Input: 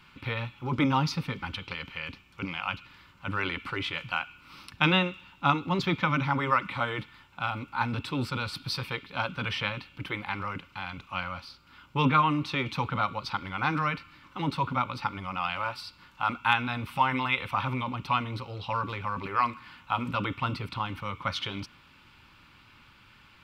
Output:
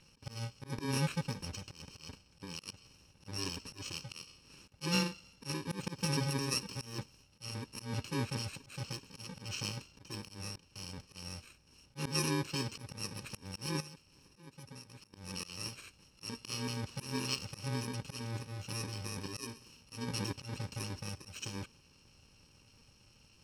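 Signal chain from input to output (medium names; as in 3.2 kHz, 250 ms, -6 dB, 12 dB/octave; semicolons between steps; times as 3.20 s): bit-reversed sample order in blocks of 64 samples; low-pass 5.4 kHz 12 dB/octave; 13.80–15.14 s: compression 16:1, threshold -44 dBFS, peak gain reduction 20 dB; slow attack 158 ms; trim -3 dB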